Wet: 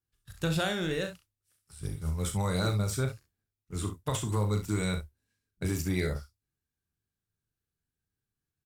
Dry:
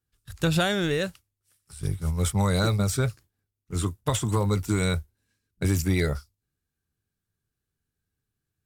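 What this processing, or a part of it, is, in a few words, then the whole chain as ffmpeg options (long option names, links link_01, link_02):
slapback doubling: -filter_complex "[0:a]asplit=3[link_01][link_02][link_03];[link_02]adelay=38,volume=-8dB[link_04];[link_03]adelay=66,volume=-11dB[link_05];[link_01][link_04][link_05]amix=inputs=3:normalize=0,volume=-6.5dB"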